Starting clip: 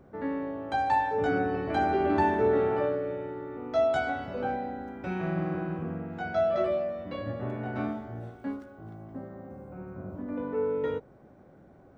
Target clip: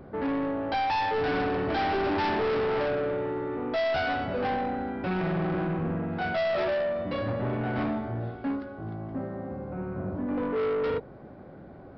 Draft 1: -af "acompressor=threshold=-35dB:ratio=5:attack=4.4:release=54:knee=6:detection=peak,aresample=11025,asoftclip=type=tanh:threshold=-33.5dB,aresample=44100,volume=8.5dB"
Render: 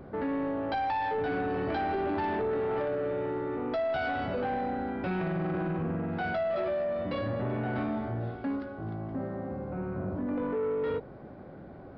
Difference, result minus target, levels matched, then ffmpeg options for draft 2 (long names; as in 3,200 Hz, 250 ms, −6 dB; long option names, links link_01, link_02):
downward compressor: peak gain reduction +13.5 dB
-af "aresample=11025,asoftclip=type=tanh:threshold=-33.5dB,aresample=44100,volume=8.5dB"